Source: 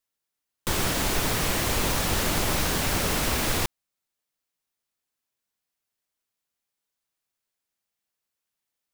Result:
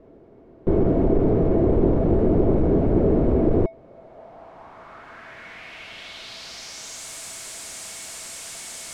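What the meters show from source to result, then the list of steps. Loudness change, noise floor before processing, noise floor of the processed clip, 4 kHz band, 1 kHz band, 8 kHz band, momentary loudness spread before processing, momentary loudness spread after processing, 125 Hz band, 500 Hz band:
+2.5 dB, −85 dBFS, −49 dBFS, −8.0 dB, −2.5 dB, −5.0 dB, 4 LU, 18 LU, +8.0 dB, +12.0 dB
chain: hollow resonant body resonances 660/2,200 Hz, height 11 dB, ringing for 90 ms
power curve on the samples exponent 0.35
low-pass filter sweep 390 Hz → 8,100 Hz, 0:03.60–0:07.10

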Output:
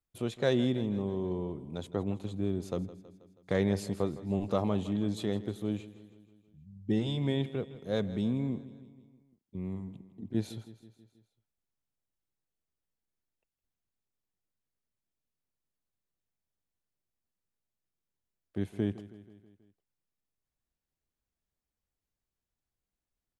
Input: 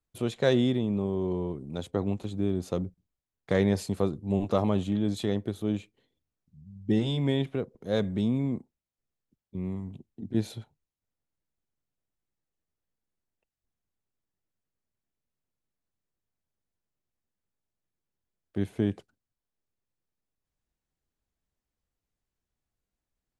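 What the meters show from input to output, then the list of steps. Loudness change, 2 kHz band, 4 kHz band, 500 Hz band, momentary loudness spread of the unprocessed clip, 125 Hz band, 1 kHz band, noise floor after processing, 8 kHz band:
−4.0 dB, −4.0 dB, −4.0 dB, −4.0 dB, 12 LU, −3.5 dB, −4.0 dB, below −85 dBFS, −4.0 dB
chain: repeating echo 161 ms, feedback 58%, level −16.5 dB
level −4 dB

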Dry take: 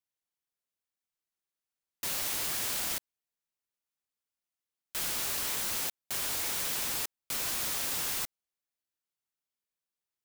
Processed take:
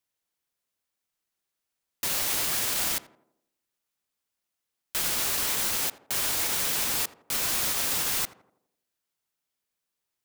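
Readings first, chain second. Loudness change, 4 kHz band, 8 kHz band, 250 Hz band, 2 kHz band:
+5.5 dB, +5.5 dB, +5.5 dB, +6.0 dB, +5.5 dB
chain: brickwall limiter −24 dBFS, peak gain reduction 4 dB
on a send: tape delay 85 ms, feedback 57%, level −12 dB, low-pass 1,100 Hz
on the sum: level +7 dB

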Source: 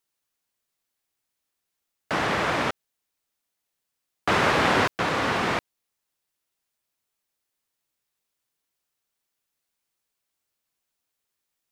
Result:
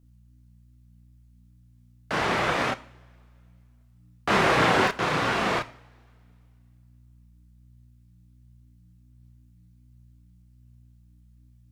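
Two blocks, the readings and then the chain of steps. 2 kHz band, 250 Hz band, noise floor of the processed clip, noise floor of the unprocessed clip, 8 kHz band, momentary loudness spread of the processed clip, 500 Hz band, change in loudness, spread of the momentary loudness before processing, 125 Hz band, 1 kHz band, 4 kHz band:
0.0 dB, 0.0 dB, −57 dBFS, −82 dBFS, −0.5 dB, 12 LU, +0.5 dB, −0.5 dB, 10 LU, +1.0 dB, 0.0 dB, −0.5 dB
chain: mains hum 60 Hz, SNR 26 dB
coupled-rooms reverb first 0.5 s, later 2.5 s, from −21 dB, DRR 13 dB
multi-voice chorus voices 6, 0.45 Hz, delay 30 ms, depth 4.6 ms
level +2.5 dB

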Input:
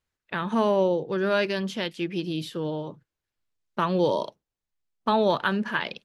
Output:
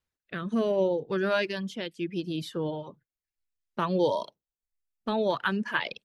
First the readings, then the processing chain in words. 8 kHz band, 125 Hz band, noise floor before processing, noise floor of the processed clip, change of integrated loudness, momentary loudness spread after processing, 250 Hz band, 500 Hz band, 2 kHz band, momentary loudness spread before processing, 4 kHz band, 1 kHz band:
−3.5 dB, −3.5 dB, below −85 dBFS, below −85 dBFS, −3.0 dB, 13 LU, −3.0 dB, −3.0 dB, −2.0 dB, 11 LU, −3.5 dB, −5.5 dB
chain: reverb reduction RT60 0.74 s
rotating-speaker cabinet horn 0.65 Hz

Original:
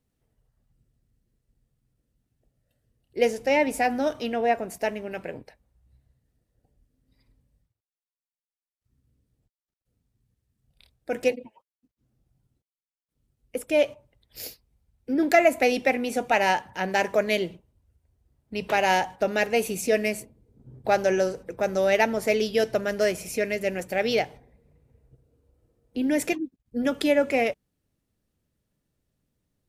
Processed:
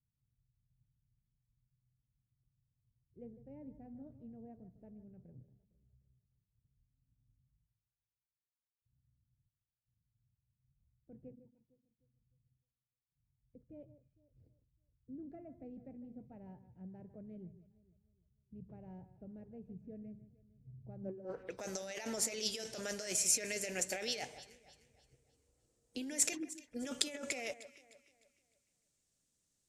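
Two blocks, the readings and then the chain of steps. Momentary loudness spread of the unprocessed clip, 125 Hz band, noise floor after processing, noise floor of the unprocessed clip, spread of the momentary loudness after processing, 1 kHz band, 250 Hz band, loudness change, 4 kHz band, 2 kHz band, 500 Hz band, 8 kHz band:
14 LU, −12.5 dB, below −85 dBFS, below −85 dBFS, 23 LU, −28.5 dB, −18.0 dB, −13.5 dB, −9.0 dB, −20.5 dB, −24.0 dB, +1.0 dB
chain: low-shelf EQ 210 Hz −5 dB
low-pass filter sweep 130 Hz → 7,300 Hz, 0:20.99–0:21.62
compressor whose output falls as the input rises −29 dBFS, ratio −1
first-order pre-emphasis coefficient 0.8
on a send: delay that swaps between a low-pass and a high-pass 152 ms, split 2,100 Hz, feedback 59%, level −13 dB

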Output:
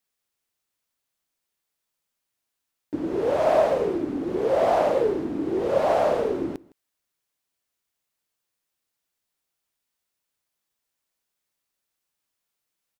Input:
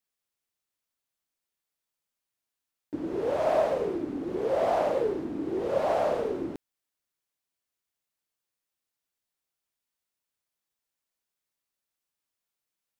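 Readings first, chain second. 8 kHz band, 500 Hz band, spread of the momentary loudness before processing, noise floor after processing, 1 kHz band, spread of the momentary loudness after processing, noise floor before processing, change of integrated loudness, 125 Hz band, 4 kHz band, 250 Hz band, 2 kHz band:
can't be measured, +5.0 dB, 10 LU, −82 dBFS, +5.0 dB, 10 LU, below −85 dBFS, +5.0 dB, +5.0 dB, +5.0 dB, +5.0 dB, +5.0 dB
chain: single-tap delay 160 ms −23.5 dB
level +5 dB

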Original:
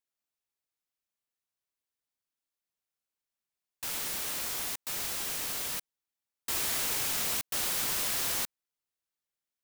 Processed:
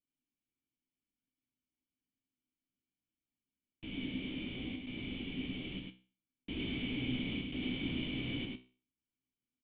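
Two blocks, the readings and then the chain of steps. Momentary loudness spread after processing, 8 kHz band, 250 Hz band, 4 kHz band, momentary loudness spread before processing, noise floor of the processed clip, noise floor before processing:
9 LU, below −40 dB, +12.5 dB, −6.5 dB, 7 LU, below −85 dBFS, below −85 dBFS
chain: formant resonators in series i
low-shelf EQ 300 Hz +8 dB
tuned comb filter 63 Hz, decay 0.38 s, harmonics all, mix 70%
single-tap delay 103 ms −3.5 dB
level +16 dB

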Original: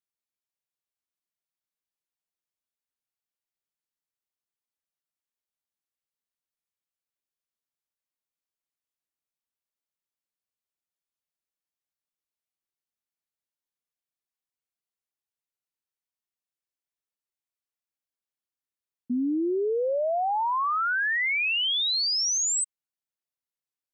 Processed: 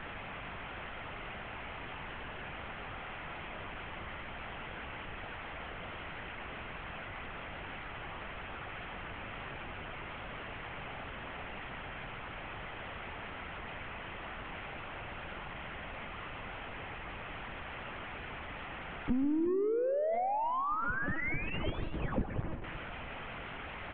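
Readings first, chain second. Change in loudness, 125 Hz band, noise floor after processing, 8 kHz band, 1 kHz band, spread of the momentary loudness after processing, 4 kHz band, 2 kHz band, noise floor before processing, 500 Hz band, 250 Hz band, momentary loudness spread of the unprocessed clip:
−15.0 dB, can't be measured, −44 dBFS, below −40 dB, −5.0 dB, 11 LU, −16.5 dB, −6.5 dB, below −85 dBFS, −4.5 dB, −3.0 dB, 5 LU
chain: linear delta modulator 16 kbit/s, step −51.5 dBFS
low-pass filter 2,300 Hz 6 dB per octave
downward compressor 4 to 1, threshold −48 dBFS, peak gain reduction 14 dB
linear-prediction vocoder at 8 kHz pitch kept
on a send: multi-tap delay 139/294/367 ms −13.5/−18.5/−16 dB
on the sum: level +16.5 dB

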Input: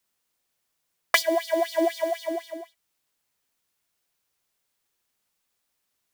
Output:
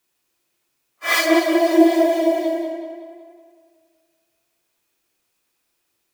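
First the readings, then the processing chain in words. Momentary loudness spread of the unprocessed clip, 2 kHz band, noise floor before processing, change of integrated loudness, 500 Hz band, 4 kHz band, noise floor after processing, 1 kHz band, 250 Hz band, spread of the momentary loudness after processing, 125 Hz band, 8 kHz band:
14 LU, +6.0 dB, −78 dBFS, +7.5 dB, +8.0 dB, +5.0 dB, −72 dBFS, +6.5 dB, +15.5 dB, 14 LU, can't be measured, +5.0 dB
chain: random phases in long frames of 200 ms
hollow resonant body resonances 340/2,500 Hz, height 11 dB, ringing for 45 ms
tape delay 186 ms, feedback 55%, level −5 dB, low-pass 4,400 Hz
level +4.5 dB

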